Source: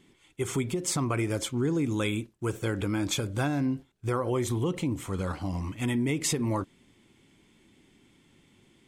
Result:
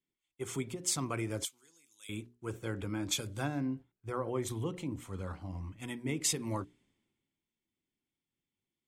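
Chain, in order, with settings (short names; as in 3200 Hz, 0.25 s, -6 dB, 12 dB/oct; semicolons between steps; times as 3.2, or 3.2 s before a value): notches 60/120/180/240/300/360/420 Hz; 1.45–2.09 differentiator; three-band expander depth 70%; gain -7.5 dB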